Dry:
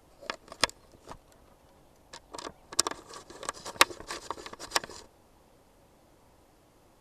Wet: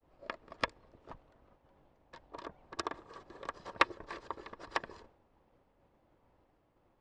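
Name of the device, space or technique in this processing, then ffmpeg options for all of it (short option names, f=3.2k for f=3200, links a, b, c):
hearing-loss simulation: -af "lowpass=2.5k,agate=range=-33dB:threshold=-55dB:ratio=3:detection=peak,volume=-4dB"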